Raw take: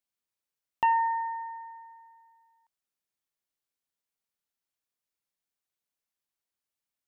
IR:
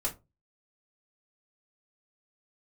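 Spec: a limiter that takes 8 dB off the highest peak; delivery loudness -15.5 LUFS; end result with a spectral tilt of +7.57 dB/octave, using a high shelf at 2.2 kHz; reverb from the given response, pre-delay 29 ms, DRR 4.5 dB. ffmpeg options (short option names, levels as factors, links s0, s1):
-filter_complex "[0:a]highshelf=f=2200:g=-3,alimiter=level_in=1.19:limit=0.0631:level=0:latency=1,volume=0.841,asplit=2[s0][s1];[1:a]atrim=start_sample=2205,adelay=29[s2];[s1][s2]afir=irnorm=-1:irlink=0,volume=0.376[s3];[s0][s3]amix=inputs=2:normalize=0,volume=5.31"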